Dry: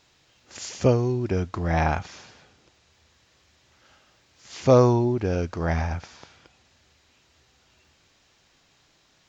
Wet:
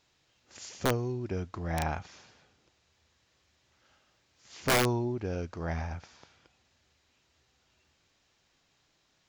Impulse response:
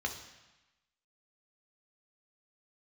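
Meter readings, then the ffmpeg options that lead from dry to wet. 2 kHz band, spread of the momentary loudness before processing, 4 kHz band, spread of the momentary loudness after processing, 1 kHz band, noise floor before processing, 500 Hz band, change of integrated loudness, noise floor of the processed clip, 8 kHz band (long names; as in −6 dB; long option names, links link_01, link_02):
−1.5 dB, 19 LU, +1.5 dB, 17 LU, −7.0 dB, −63 dBFS, −11.0 dB, −8.5 dB, −72 dBFS, can't be measured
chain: -af "aeval=exprs='(mod(3.16*val(0)+1,2)-1)/3.16':channel_layout=same,volume=-9dB"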